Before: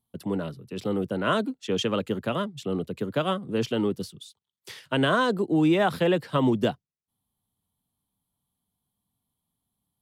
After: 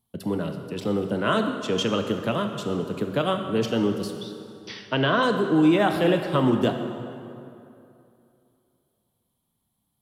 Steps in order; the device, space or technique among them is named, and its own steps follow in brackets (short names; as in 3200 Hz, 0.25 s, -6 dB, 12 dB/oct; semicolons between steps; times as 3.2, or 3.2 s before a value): 4.16–5.23 Chebyshev low-pass 6000 Hz, order 10; parallel compression (in parallel at -4 dB: compressor, threshold -36 dBFS, peak gain reduction 17 dB); on the sum: plate-style reverb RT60 2.7 s, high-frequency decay 0.65×, DRR 5 dB